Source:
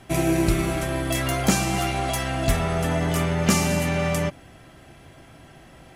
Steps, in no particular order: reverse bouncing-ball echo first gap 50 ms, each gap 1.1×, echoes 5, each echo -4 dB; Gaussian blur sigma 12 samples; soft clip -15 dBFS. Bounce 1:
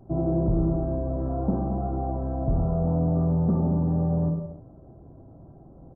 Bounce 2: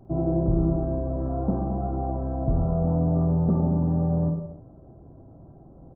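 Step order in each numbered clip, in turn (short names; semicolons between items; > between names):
reverse bouncing-ball echo > soft clip > Gaussian blur; soft clip > Gaussian blur > reverse bouncing-ball echo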